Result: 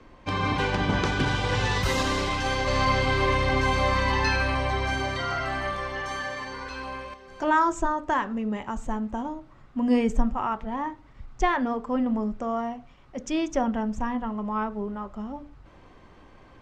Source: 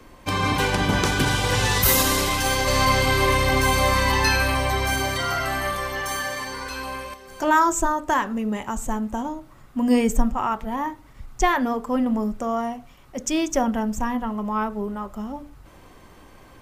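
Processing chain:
high-frequency loss of the air 130 metres
level −3 dB

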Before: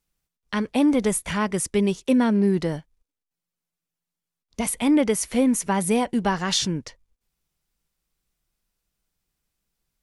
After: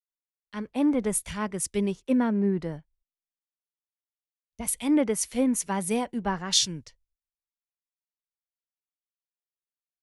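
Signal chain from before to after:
multiband upward and downward expander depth 100%
level −5.5 dB

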